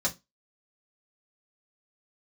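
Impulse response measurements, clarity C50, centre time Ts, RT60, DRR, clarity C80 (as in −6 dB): 19.0 dB, 9 ms, 0.20 s, −4.0 dB, 28.0 dB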